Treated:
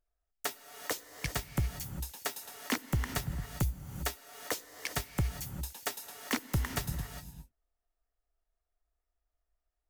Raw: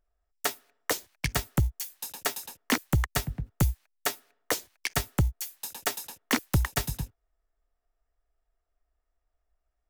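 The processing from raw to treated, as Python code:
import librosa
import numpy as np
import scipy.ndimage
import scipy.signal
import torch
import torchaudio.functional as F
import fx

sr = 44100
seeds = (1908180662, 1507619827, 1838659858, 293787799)

y = fx.rev_gated(x, sr, seeds[0], gate_ms=430, shape='rising', drr_db=9.0)
y = F.gain(torch.from_numpy(y), -6.5).numpy()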